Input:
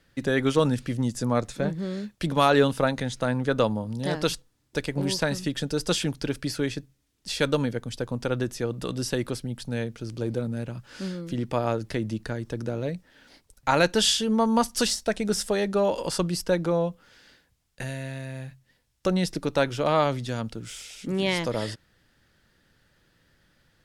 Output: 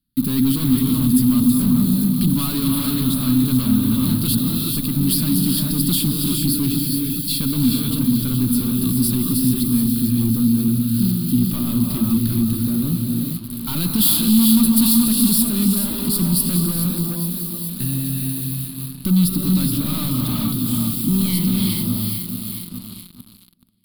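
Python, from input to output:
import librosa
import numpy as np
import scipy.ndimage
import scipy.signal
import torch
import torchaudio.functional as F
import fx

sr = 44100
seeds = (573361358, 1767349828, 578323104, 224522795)

p1 = fx.echo_feedback(x, sr, ms=424, feedback_pct=59, wet_db=-11.5)
p2 = fx.rev_gated(p1, sr, seeds[0], gate_ms=460, shape='rising', drr_db=3.0)
p3 = fx.leveller(p2, sr, passes=5)
p4 = (np.mod(10.0 ** (17.5 / 20.0) * p3 + 1.0, 2.0) - 1.0) / 10.0 ** (17.5 / 20.0)
p5 = p3 + (p4 * 10.0 ** (-5.0 / 20.0))
p6 = fx.curve_eq(p5, sr, hz=(130.0, 250.0, 490.0, 760.0, 1200.0, 1800.0, 4300.0, 6100.0, 11000.0), db=(0, 7, -26, -22, -11, -22, 2, -20, 13))
y = p6 * 10.0 ** (-7.5 / 20.0)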